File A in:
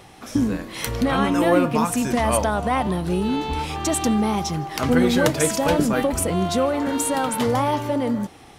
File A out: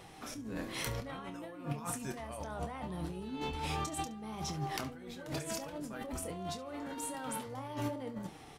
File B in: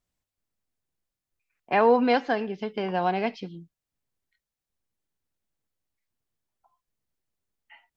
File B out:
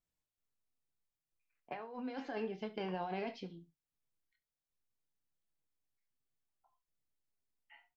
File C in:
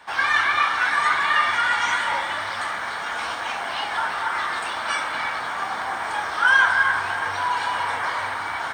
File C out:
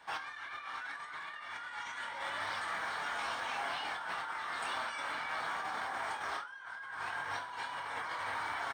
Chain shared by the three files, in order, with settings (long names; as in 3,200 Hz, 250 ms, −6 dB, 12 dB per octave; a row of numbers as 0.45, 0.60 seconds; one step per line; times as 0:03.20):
compressor whose output falls as the input rises −28 dBFS, ratio −1
flanger 0.73 Hz, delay 6 ms, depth 1.8 ms, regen +69%
on a send: ambience of single reflections 27 ms −10 dB, 70 ms −17.5 dB
on the sum: level −9 dB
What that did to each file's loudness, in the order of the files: −19.0, −17.5, −16.5 LU